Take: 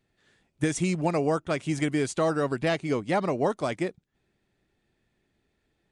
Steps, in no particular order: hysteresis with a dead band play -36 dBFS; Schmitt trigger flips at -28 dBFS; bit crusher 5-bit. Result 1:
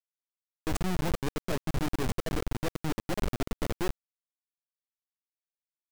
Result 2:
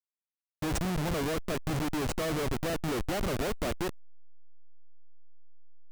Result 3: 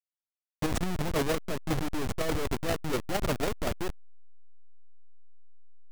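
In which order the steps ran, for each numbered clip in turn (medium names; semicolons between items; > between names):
Schmitt trigger > hysteresis with a dead band > bit crusher; bit crusher > Schmitt trigger > hysteresis with a dead band; Schmitt trigger > bit crusher > hysteresis with a dead band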